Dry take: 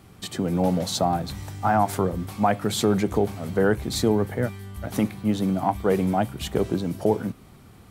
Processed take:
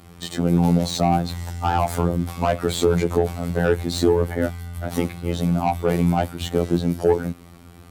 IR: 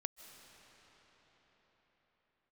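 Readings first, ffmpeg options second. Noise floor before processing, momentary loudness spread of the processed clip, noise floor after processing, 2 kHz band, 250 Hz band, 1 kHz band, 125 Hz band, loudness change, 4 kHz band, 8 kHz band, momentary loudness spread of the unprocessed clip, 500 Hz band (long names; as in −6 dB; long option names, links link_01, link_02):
−50 dBFS, 7 LU, −45 dBFS, +1.5 dB, +2.0 dB, +1.0 dB, +5.0 dB, +2.5 dB, +1.5 dB, 0.0 dB, 7 LU, +3.0 dB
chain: -filter_complex "[0:a]afftfilt=real='hypot(re,im)*cos(PI*b)':imag='0':win_size=2048:overlap=0.75,acrossover=split=400[link_01][link_02];[link_02]asoftclip=type=tanh:threshold=-22dB[link_03];[link_01][link_03]amix=inputs=2:normalize=0,volume=7.5dB"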